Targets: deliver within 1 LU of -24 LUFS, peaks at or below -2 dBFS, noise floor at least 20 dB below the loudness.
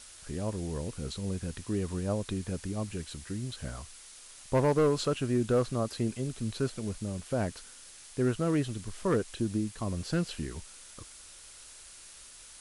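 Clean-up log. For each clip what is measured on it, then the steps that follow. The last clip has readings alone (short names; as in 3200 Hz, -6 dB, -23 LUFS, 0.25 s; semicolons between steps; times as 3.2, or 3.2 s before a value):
clipped 0.5%; flat tops at -19.5 dBFS; noise floor -51 dBFS; noise floor target -53 dBFS; loudness -32.5 LUFS; peak -19.5 dBFS; loudness target -24.0 LUFS
-> clip repair -19.5 dBFS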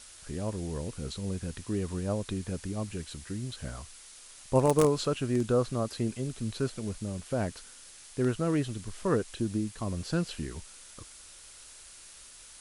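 clipped 0.0%; noise floor -51 dBFS; noise floor target -52 dBFS
-> noise print and reduce 6 dB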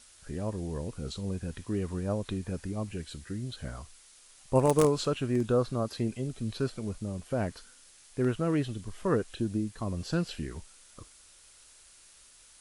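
noise floor -57 dBFS; loudness -32.0 LUFS; peak -10.5 dBFS; loudness target -24.0 LUFS
-> gain +8 dB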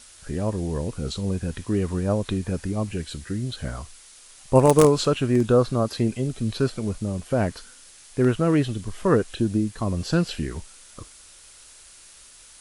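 loudness -24.0 LUFS; peak -2.5 dBFS; noise floor -49 dBFS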